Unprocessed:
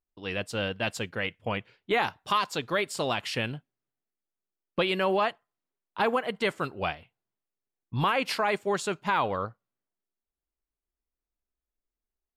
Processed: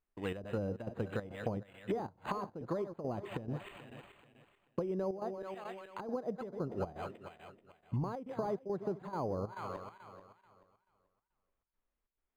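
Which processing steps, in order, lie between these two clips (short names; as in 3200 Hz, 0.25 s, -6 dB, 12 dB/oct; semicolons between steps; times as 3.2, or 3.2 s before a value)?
regenerating reverse delay 0.217 s, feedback 51%, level -13.5 dB; treble ducked by the level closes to 520 Hz, closed at -26.5 dBFS; compressor 6:1, threshold -34 dBFS, peak gain reduction 10 dB; chopper 2.3 Hz, depth 65%, duty 75%; decimation joined by straight lines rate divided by 8×; gain +2 dB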